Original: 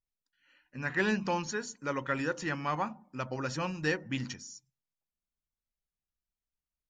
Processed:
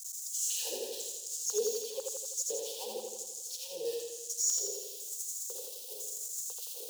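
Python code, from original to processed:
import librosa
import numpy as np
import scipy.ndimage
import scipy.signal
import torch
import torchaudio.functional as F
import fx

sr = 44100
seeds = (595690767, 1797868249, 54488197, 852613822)

p1 = np.sign(x) * np.sqrt(np.mean(np.square(x)))
p2 = scipy.signal.sosfilt(scipy.signal.cheby1(2, 1.0, [570.0, 3000.0], 'bandstop', fs=sr, output='sos'), p1)
p3 = fx.low_shelf(p2, sr, hz=160.0, db=7.0)
p4 = fx.over_compress(p3, sr, threshold_db=-42.0, ratio=-0.5)
p5 = p3 + (p4 * 10.0 ** (2.0 / 20.0))
p6 = fx.filter_lfo_highpass(p5, sr, shape='square', hz=1.0, low_hz=490.0, high_hz=6900.0, q=4.9)
p7 = fx.fixed_phaser(p6, sr, hz=430.0, stages=8)
p8 = fx.filter_lfo_highpass(p7, sr, shape='sine', hz=2.3, low_hz=300.0, high_hz=3200.0, q=1.3)
p9 = fx.quant_float(p8, sr, bits=6)
p10 = p9 + fx.echo_feedback(p9, sr, ms=84, feedback_pct=59, wet_db=-3.0, dry=0)
y = p10 * 10.0 ** (-5.0 / 20.0)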